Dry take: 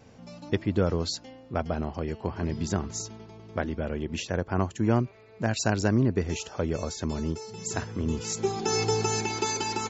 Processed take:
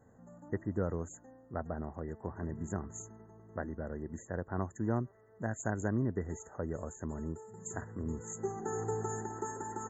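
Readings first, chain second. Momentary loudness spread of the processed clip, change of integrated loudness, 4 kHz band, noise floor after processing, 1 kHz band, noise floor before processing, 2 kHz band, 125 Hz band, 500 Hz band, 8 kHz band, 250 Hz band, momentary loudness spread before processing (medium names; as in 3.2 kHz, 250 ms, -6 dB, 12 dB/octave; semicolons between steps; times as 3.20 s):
10 LU, -9.5 dB, under -40 dB, -61 dBFS, -9.0 dB, -52 dBFS, -11.0 dB, -9.0 dB, -9.0 dB, no reading, -9.0 dB, 9 LU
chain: brick-wall FIR band-stop 2–6.3 kHz; trim -9 dB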